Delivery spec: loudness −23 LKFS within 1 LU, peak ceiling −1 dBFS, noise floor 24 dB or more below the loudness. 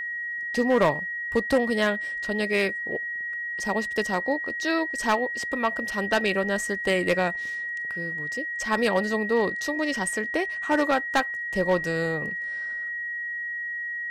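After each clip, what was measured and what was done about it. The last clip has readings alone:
share of clipped samples 0.4%; peaks flattened at −14.5 dBFS; interfering tone 1,900 Hz; level of the tone −29 dBFS; integrated loudness −26.0 LKFS; sample peak −14.5 dBFS; target loudness −23.0 LKFS
→ clipped peaks rebuilt −14.5 dBFS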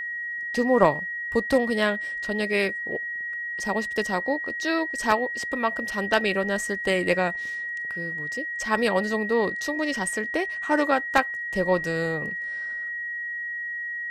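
share of clipped samples 0.0%; interfering tone 1,900 Hz; level of the tone −29 dBFS
→ notch filter 1,900 Hz, Q 30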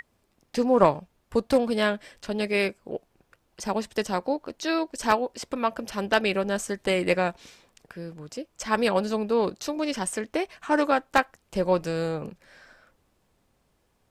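interfering tone none found; integrated loudness −26.5 LKFS; sample peak −5.0 dBFS; target loudness −23.0 LKFS
→ level +3.5 dB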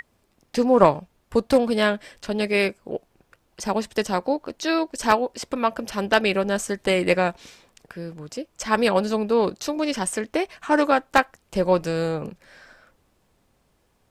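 integrated loudness −23.0 LKFS; sample peak −1.5 dBFS; background noise floor −66 dBFS

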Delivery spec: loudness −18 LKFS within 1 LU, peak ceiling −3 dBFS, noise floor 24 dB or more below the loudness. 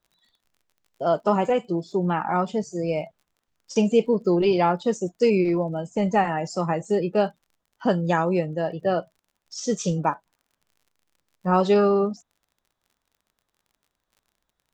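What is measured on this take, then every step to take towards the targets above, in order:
crackle rate 36 per second; integrated loudness −23.5 LKFS; sample peak −7.0 dBFS; target loudness −18.0 LKFS
→ click removal
level +5.5 dB
brickwall limiter −3 dBFS

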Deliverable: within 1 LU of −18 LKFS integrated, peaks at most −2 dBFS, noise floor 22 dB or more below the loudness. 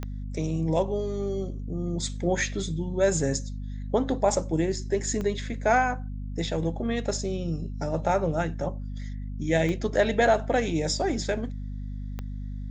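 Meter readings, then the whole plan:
number of clicks 4; mains hum 50 Hz; hum harmonics up to 250 Hz; level of the hum −31 dBFS; integrated loudness −28.0 LKFS; sample peak −9.5 dBFS; target loudness −18.0 LKFS
→ click removal
hum removal 50 Hz, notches 5
level +10 dB
brickwall limiter −2 dBFS

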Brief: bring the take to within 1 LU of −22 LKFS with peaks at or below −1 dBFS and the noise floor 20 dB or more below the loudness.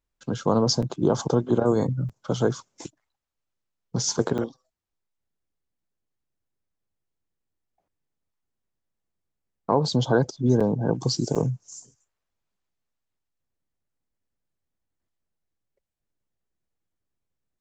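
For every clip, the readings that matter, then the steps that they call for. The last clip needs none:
number of dropouts 5; longest dropout 5.8 ms; integrated loudness −24.5 LKFS; sample peak −6.5 dBFS; target loudness −22.0 LKFS
→ repair the gap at 0:00.82/0:02.09/0:04.38/0:10.60/0:11.35, 5.8 ms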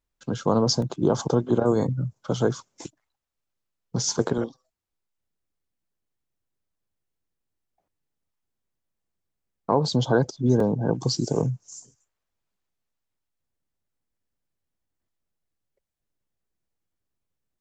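number of dropouts 0; integrated loudness −24.5 LKFS; sample peak −6.5 dBFS; target loudness −22.0 LKFS
→ level +2.5 dB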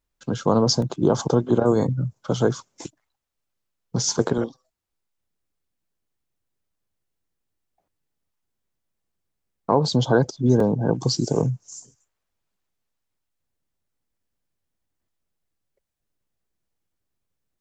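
integrated loudness −22.0 LKFS; sample peak −4.5 dBFS; background noise floor −80 dBFS

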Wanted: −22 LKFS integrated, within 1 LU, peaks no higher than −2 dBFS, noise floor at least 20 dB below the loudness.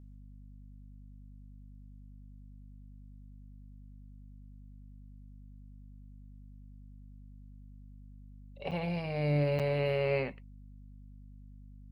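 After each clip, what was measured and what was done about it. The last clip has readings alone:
number of dropouts 2; longest dropout 7.1 ms; mains hum 50 Hz; hum harmonics up to 250 Hz; level of the hum −48 dBFS; integrated loudness −32.0 LKFS; sample peak −19.0 dBFS; target loudness −22.0 LKFS
→ repair the gap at 0:08.71/0:09.59, 7.1 ms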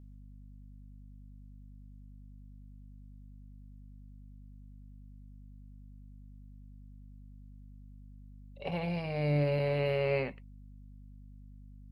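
number of dropouts 0; mains hum 50 Hz; hum harmonics up to 250 Hz; level of the hum −48 dBFS
→ mains-hum notches 50/100/150/200/250 Hz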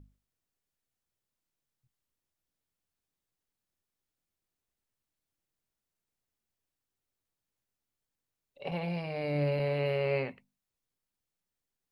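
mains hum none found; integrated loudness −32.5 LKFS; sample peak −20.0 dBFS; target loudness −22.0 LKFS
→ level +10.5 dB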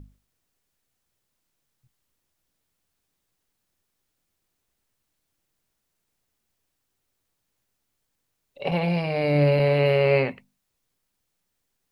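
integrated loudness −22.0 LKFS; sample peak −9.5 dBFS; background noise floor −78 dBFS

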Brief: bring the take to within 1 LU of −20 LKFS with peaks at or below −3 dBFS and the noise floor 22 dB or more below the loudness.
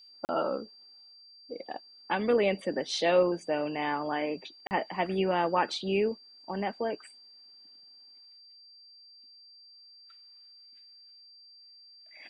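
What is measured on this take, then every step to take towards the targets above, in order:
number of dropouts 2; longest dropout 39 ms; interfering tone 4,700 Hz; level of the tone −52 dBFS; integrated loudness −30.0 LKFS; sample peak −12.0 dBFS; target loudness −20.0 LKFS
→ repair the gap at 0:00.25/0:04.67, 39 ms
notch filter 4,700 Hz, Q 30
level +10 dB
brickwall limiter −3 dBFS

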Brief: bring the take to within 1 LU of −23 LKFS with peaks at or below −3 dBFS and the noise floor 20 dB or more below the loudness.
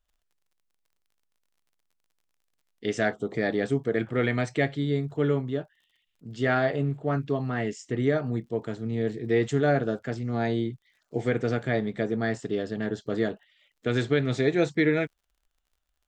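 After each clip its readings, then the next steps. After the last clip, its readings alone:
crackle rate 29 per second; integrated loudness −27.5 LKFS; sample peak −9.5 dBFS; target loudness −23.0 LKFS
→ click removal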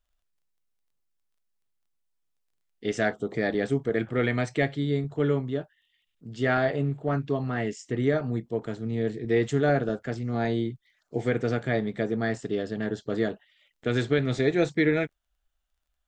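crackle rate 0 per second; integrated loudness −27.5 LKFS; sample peak −9.5 dBFS; target loudness −23.0 LKFS
→ level +4.5 dB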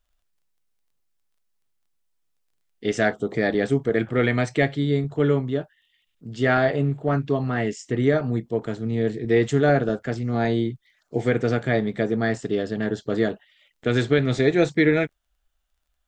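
integrated loudness −23.0 LKFS; sample peak −5.0 dBFS; background noise floor −74 dBFS

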